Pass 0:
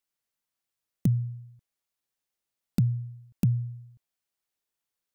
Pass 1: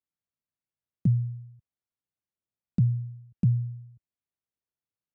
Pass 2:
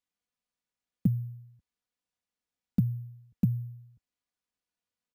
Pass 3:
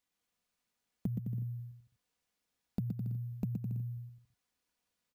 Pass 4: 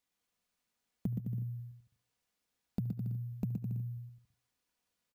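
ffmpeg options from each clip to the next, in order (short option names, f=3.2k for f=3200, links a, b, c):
-af "highpass=89,aemphasis=mode=reproduction:type=riaa,volume=-9dB"
-af "aecho=1:1:4.1:0.51,acrusher=samples=3:mix=1:aa=0.000001"
-af "alimiter=level_in=1dB:limit=-24dB:level=0:latency=1:release=333,volume=-1dB,aecho=1:1:120|210|277.5|328.1|366.1:0.631|0.398|0.251|0.158|0.1,acompressor=threshold=-41dB:ratio=2,volume=4.5dB"
-af "aecho=1:1:73|146|219|292:0.0944|0.0453|0.0218|0.0104"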